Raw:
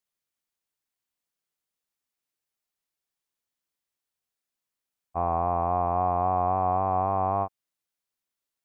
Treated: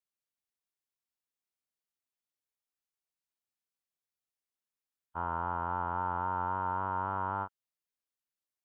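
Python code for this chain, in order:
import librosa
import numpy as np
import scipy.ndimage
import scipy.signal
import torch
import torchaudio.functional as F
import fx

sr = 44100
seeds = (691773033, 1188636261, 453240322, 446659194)

y = fx.formant_shift(x, sr, semitones=4)
y = y * 10.0 ** (-8.5 / 20.0)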